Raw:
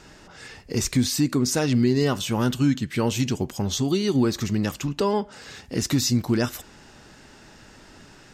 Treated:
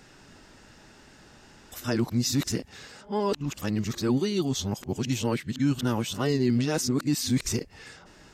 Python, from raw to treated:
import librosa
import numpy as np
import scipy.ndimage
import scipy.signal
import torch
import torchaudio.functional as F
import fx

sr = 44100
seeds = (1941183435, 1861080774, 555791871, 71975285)

y = np.flip(x).copy()
y = y * 10.0 ** (-4.0 / 20.0)